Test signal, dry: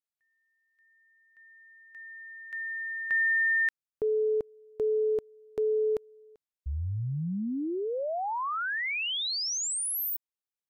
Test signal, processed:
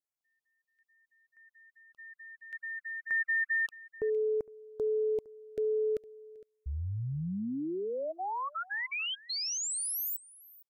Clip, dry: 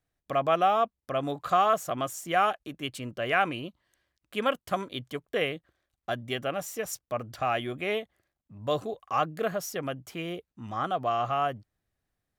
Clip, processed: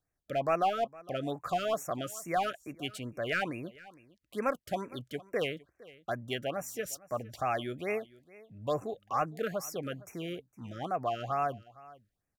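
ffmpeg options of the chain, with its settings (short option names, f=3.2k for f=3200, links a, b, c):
-filter_complex "[0:a]asplit=2[a][b];[b]aeval=exprs='0.0944*(abs(mod(val(0)/0.0944+3,4)-2)-1)':c=same,volume=-8dB[c];[a][c]amix=inputs=2:normalize=0,aecho=1:1:460:0.0891,afftfilt=real='re*(1-between(b*sr/1024,860*pow(4000/860,0.5+0.5*sin(2*PI*2.3*pts/sr))/1.41,860*pow(4000/860,0.5+0.5*sin(2*PI*2.3*pts/sr))*1.41))':imag='im*(1-between(b*sr/1024,860*pow(4000/860,0.5+0.5*sin(2*PI*2.3*pts/sr))/1.41,860*pow(4000/860,0.5+0.5*sin(2*PI*2.3*pts/sr))*1.41))':win_size=1024:overlap=0.75,volume=-6dB"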